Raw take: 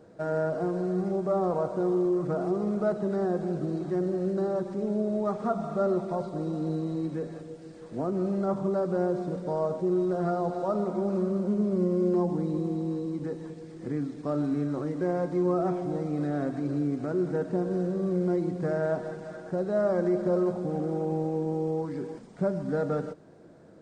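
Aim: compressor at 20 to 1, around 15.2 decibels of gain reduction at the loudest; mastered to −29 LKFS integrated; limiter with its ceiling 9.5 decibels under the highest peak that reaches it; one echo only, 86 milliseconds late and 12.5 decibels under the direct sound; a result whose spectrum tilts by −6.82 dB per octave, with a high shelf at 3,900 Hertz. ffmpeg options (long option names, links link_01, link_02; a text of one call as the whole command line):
ffmpeg -i in.wav -af "highshelf=frequency=3900:gain=7,acompressor=threshold=-37dB:ratio=20,alimiter=level_in=12dB:limit=-24dB:level=0:latency=1,volume=-12dB,aecho=1:1:86:0.237,volume=15dB" out.wav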